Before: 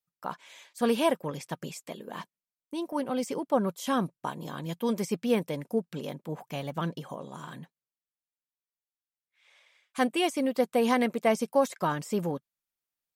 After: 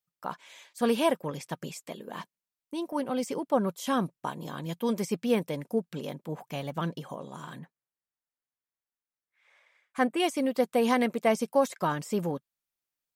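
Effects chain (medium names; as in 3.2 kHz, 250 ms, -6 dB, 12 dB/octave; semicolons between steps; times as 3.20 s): 7.59–10.20 s: resonant high shelf 2.4 kHz -6.5 dB, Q 1.5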